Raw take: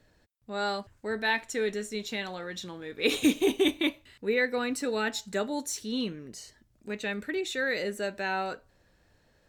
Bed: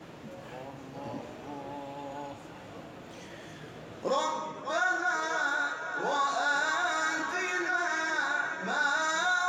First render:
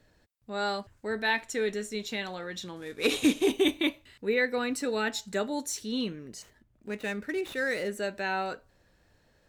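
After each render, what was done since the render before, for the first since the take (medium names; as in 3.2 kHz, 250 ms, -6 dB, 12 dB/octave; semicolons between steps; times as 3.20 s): 2.76–3.52 s: CVSD coder 64 kbps; 6.42–7.89 s: median filter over 9 samples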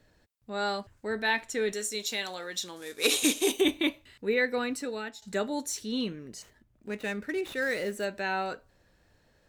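1.72–3.61 s: tone controls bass -11 dB, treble +11 dB; 4.59–5.22 s: fade out, to -16 dB; 7.62–8.05 s: companded quantiser 6-bit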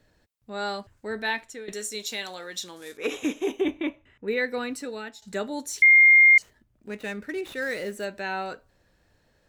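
1.28–1.68 s: fade out, to -15.5 dB; 2.97–4.28 s: boxcar filter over 10 samples; 5.82–6.38 s: bleep 2.12 kHz -11 dBFS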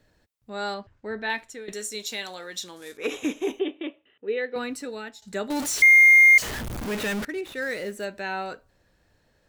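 0.74–1.30 s: distance through air 150 m; 3.59–4.56 s: cabinet simulation 370–3200 Hz, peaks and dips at 440 Hz +4 dB, 630 Hz -3 dB, 960 Hz -10 dB, 1.5 kHz -5 dB, 2.2 kHz -9 dB, 3.1 kHz +8 dB; 5.50–7.25 s: jump at every zero crossing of -26 dBFS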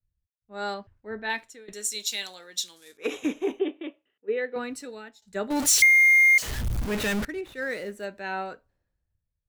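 compression 2.5:1, threshold -24 dBFS, peak gain reduction 8 dB; three bands expanded up and down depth 100%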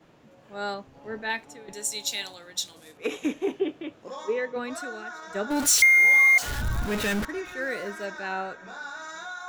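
add bed -10 dB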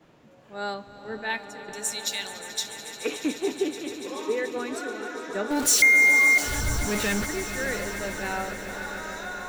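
echo with a slow build-up 144 ms, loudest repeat 5, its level -15 dB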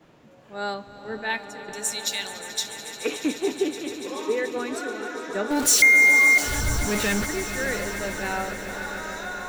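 trim +2 dB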